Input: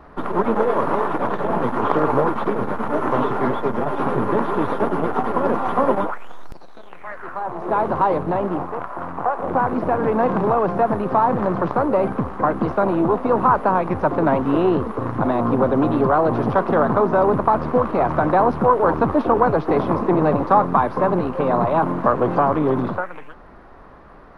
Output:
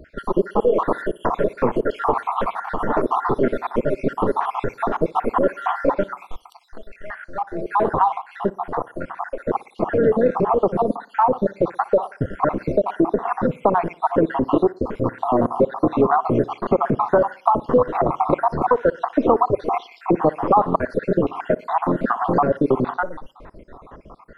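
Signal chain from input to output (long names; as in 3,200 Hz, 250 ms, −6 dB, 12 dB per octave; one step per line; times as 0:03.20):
time-frequency cells dropped at random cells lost 65%
dynamic equaliser 460 Hz, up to +5 dB, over −33 dBFS, Q 1
downward compressor 2 to 1, threshold −21 dBFS, peak gain reduction 7.5 dB
tape delay 60 ms, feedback 46%, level −20 dB, low-pass 2,900 Hz
level +4.5 dB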